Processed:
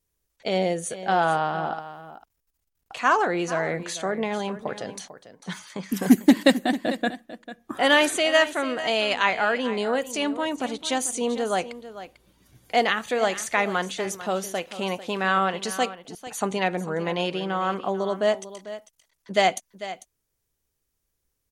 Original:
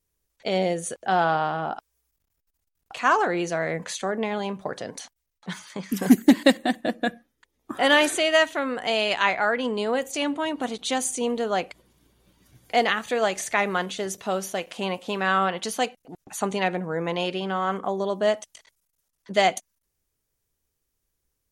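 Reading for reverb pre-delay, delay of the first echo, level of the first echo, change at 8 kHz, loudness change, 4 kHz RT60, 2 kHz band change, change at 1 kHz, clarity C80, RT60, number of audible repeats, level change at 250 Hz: no reverb, 446 ms, -14.0 dB, 0.0 dB, 0.0 dB, no reverb, 0.0 dB, 0.0 dB, no reverb, no reverb, 1, 0.0 dB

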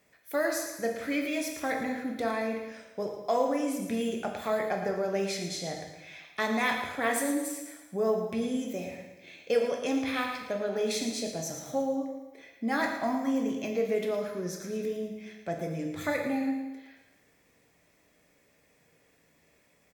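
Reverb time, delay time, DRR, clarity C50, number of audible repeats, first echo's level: 1.1 s, 112 ms, 2.0 dB, 4.5 dB, 2, -10.0 dB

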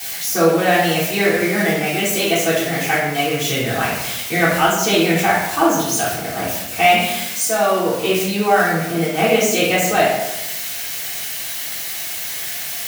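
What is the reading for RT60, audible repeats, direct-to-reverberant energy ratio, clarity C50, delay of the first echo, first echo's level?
1.0 s, no echo, -12.5 dB, 1.0 dB, no echo, no echo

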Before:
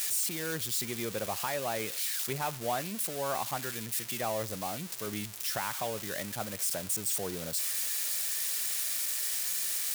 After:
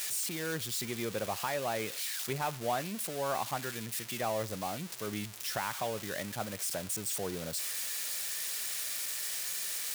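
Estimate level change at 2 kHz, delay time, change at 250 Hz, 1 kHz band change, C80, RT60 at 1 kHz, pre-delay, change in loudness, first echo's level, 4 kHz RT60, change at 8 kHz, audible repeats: -0.5 dB, no echo, 0.0 dB, 0.0 dB, no reverb, no reverb, no reverb, -3.0 dB, no echo, no reverb, -3.5 dB, no echo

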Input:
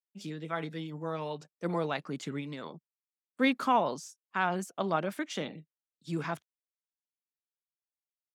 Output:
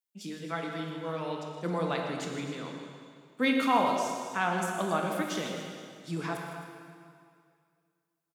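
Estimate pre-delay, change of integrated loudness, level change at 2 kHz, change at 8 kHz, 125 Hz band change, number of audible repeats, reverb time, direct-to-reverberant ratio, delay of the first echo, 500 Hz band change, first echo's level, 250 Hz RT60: 5 ms, +2.0 dB, +2.5 dB, +5.5 dB, +1.0 dB, 3, 2.2 s, 0.5 dB, 119 ms, +1.5 dB, -12.5 dB, 2.3 s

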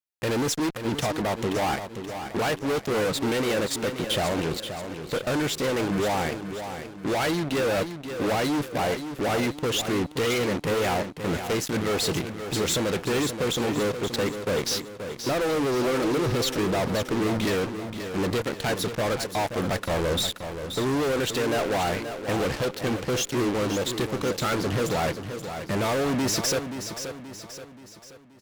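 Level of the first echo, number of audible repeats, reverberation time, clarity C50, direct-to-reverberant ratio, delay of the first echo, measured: -9.0 dB, 4, no reverb, no reverb, no reverb, 528 ms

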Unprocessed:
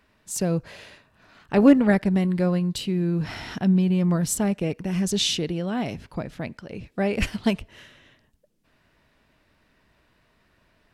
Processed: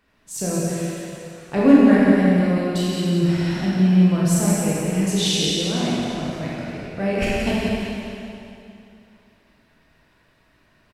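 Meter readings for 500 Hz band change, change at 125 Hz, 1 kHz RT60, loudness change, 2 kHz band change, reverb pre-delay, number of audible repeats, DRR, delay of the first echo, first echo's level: +4.0 dB, +4.5 dB, 2.7 s, +4.0 dB, +5.0 dB, 18 ms, 1, -7.5 dB, 174 ms, -6.5 dB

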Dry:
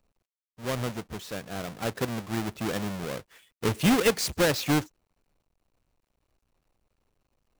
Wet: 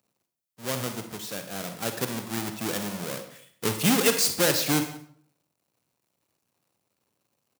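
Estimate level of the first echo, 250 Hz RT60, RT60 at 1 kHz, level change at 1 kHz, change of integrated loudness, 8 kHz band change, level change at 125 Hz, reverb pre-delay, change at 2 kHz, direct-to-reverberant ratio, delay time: -21.0 dB, 0.65 s, 0.60 s, 0.0 dB, +2.0 dB, +7.0 dB, -2.0 dB, 39 ms, +1.0 dB, 7.0 dB, 177 ms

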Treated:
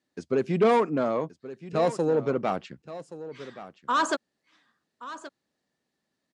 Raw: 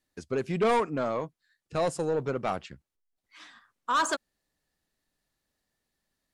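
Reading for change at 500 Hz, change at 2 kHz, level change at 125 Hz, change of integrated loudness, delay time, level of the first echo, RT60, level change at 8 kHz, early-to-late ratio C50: +4.5 dB, +1.0 dB, +2.5 dB, +3.0 dB, 1125 ms, -15.0 dB, no reverb, -3.0 dB, no reverb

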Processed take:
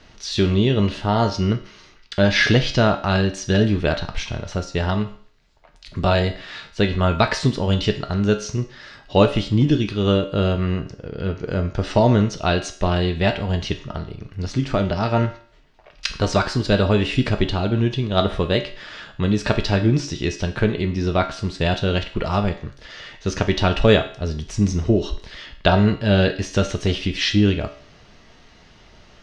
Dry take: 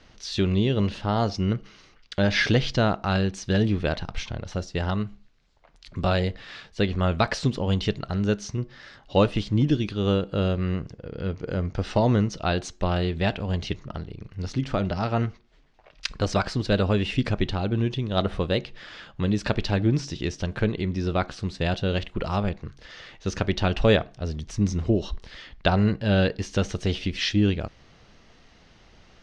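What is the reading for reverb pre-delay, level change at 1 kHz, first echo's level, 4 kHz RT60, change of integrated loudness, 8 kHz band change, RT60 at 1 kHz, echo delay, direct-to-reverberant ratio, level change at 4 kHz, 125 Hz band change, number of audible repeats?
3 ms, +5.5 dB, no echo, 0.50 s, +5.0 dB, no reading, 0.50 s, no echo, 5.0 dB, +6.0 dB, +4.5 dB, no echo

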